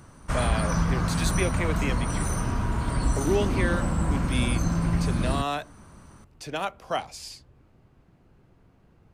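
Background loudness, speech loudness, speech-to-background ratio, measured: -27.0 LUFS, -32.0 LUFS, -5.0 dB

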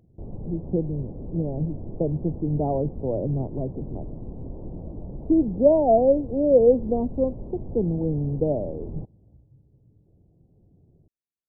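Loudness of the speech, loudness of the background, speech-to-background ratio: -24.0 LUFS, -38.5 LUFS, 14.5 dB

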